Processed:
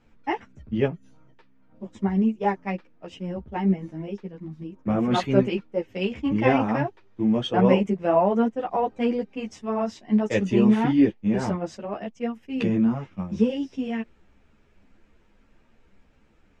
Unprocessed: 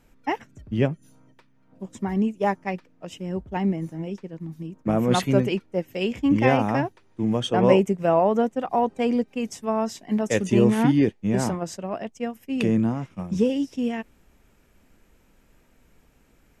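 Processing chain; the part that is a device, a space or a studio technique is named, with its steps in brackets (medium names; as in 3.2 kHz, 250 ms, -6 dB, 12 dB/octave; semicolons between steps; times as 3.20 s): string-machine ensemble chorus (three-phase chorus; low-pass 4.3 kHz 12 dB/octave); trim +2 dB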